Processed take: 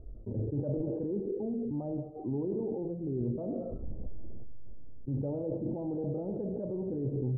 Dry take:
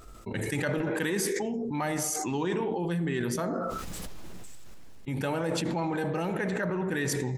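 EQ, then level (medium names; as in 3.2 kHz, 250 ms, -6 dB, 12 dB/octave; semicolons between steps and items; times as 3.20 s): steep low-pass 590 Hz 36 dB/octave; peaking EQ 170 Hz -14 dB 0.24 oct; peaking EQ 420 Hz -8.5 dB 2.1 oct; +5.0 dB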